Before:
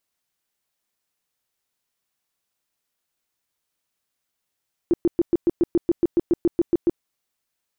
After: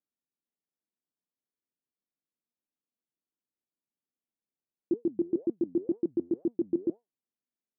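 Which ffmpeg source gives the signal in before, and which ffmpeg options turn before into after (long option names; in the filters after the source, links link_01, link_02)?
-f lavfi -i "aevalsrc='0.211*sin(2*PI*342*mod(t,0.14))*lt(mod(t,0.14),9/342)':duration=2.1:sample_rate=44100"
-af "bandpass=frequency=260:width_type=q:width=1.7:csg=0,flanger=delay=4.1:depth=7.7:regen=84:speed=2:shape=sinusoidal"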